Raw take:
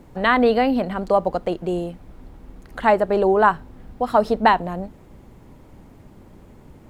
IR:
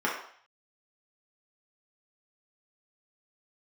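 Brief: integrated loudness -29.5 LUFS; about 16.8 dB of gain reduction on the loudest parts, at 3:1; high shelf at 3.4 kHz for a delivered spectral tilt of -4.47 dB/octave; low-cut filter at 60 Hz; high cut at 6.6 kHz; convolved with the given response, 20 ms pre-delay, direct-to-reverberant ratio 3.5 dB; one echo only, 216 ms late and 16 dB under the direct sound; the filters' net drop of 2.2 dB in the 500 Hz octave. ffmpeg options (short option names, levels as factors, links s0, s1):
-filter_complex "[0:a]highpass=60,lowpass=6600,equalizer=f=500:t=o:g=-3,highshelf=f=3400:g=5.5,acompressor=threshold=0.02:ratio=3,aecho=1:1:216:0.158,asplit=2[s0][s1];[1:a]atrim=start_sample=2205,adelay=20[s2];[s1][s2]afir=irnorm=-1:irlink=0,volume=0.178[s3];[s0][s3]amix=inputs=2:normalize=0,volume=1.5"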